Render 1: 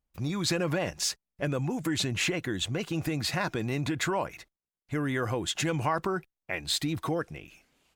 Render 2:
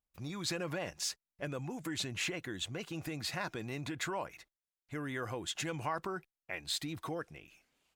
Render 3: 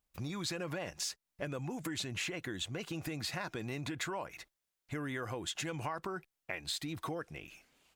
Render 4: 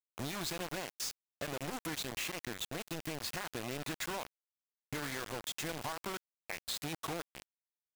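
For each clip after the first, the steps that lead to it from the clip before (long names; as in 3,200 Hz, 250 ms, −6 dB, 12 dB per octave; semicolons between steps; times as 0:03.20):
low-shelf EQ 430 Hz −4.5 dB; level −7 dB
downward compressor 3 to 1, threshold −45 dBFS, peak gain reduction 10.5 dB; level +7 dB
bit-depth reduction 6 bits, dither none; level −2 dB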